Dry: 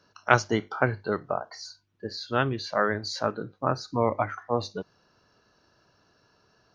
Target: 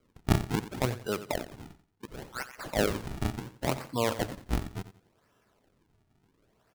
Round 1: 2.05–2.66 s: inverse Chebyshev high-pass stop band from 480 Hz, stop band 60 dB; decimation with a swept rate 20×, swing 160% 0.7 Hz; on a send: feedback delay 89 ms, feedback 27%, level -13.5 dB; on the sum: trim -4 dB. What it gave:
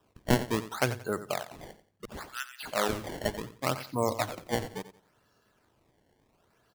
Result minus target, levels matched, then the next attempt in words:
decimation with a swept rate: distortion -7 dB
2.05–2.66 s: inverse Chebyshev high-pass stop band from 480 Hz, stop band 60 dB; decimation with a swept rate 48×, swing 160% 0.7 Hz; on a send: feedback delay 89 ms, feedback 27%, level -13.5 dB; on the sum: trim -4 dB

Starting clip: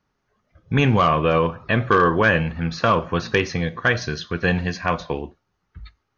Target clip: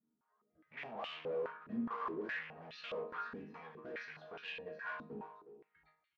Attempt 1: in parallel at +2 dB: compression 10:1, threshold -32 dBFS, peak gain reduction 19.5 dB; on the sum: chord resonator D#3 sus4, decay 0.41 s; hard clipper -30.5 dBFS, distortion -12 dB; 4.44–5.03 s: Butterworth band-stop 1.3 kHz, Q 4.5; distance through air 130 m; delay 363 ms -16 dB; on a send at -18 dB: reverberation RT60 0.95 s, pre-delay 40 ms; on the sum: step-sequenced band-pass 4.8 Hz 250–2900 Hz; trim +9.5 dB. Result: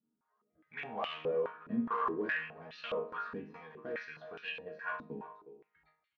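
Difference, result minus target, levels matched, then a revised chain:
hard clipper: distortion -8 dB
in parallel at +2 dB: compression 10:1, threshold -32 dBFS, peak gain reduction 19.5 dB; on the sum: chord resonator D#3 sus4, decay 0.41 s; hard clipper -40 dBFS, distortion -4 dB; 4.44–5.03 s: Butterworth band-stop 1.3 kHz, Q 4.5; distance through air 130 m; delay 363 ms -16 dB; on a send at -18 dB: reverberation RT60 0.95 s, pre-delay 40 ms; on the sum: step-sequenced band-pass 4.8 Hz 250–2900 Hz; trim +9.5 dB

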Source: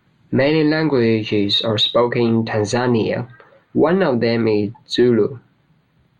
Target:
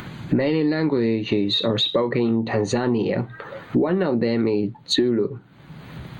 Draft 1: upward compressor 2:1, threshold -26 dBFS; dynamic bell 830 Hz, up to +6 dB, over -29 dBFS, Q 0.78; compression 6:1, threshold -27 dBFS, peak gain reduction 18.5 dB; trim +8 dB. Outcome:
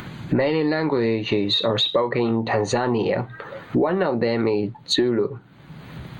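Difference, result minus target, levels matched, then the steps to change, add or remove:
1 kHz band +5.0 dB
change: dynamic bell 250 Hz, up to +6 dB, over -29 dBFS, Q 0.78

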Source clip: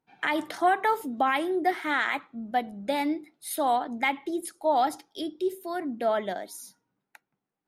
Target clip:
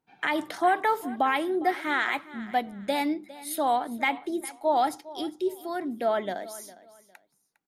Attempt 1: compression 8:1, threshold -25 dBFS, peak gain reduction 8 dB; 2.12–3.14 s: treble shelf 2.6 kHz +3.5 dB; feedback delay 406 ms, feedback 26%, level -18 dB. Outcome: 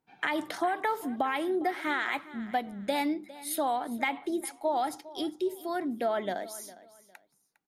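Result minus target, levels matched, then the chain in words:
compression: peak gain reduction +8 dB
2.12–3.14 s: treble shelf 2.6 kHz +3.5 dB; feedback delay 406 ms, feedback 26%, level -18 dB

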